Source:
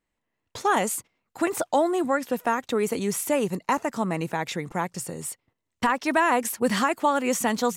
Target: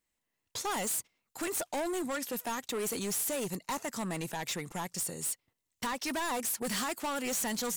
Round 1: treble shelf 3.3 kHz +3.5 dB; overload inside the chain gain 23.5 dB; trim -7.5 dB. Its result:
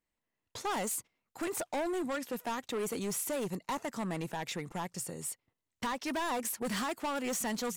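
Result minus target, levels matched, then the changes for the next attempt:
8 kHz band -3.0 dB
change: treble shelf 3.3 kHz +14.5 dB

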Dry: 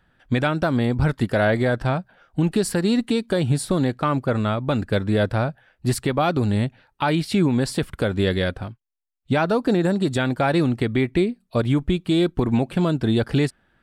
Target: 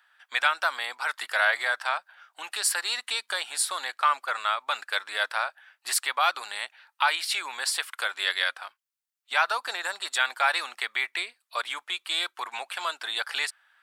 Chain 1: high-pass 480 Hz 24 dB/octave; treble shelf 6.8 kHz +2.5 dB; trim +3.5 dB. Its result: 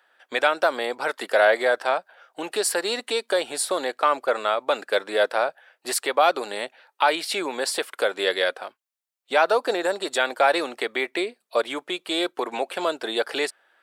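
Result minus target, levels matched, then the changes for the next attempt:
500 Hz band +13.5 dB
change: high-pass 980 Hz 24 dB/octave

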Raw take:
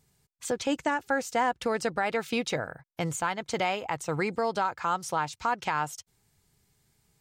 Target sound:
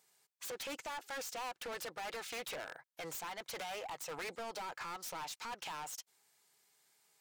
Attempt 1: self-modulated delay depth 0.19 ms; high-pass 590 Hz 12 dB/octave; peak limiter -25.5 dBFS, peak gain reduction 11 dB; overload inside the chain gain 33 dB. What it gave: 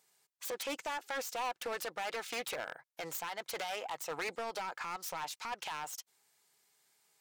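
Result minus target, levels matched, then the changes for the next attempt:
overload inside the chain: distortion -6 dB
change: overload inside the chain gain 40 dB

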